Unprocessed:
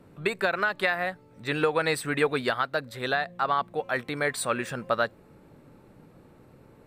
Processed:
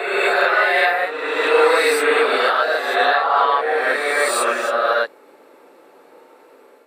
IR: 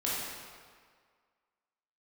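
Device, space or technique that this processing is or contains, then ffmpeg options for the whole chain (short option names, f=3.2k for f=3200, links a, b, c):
ghost voice: -filter_complex "[0:a]areverse[a];[1:a]atrim=start_sample=2205[b];[a][b]afir=irnorm=-1:irlink=0,areverse,highpass=f=390:w=0.5412,highpass=f=390:w=1.3066,volume=4dB"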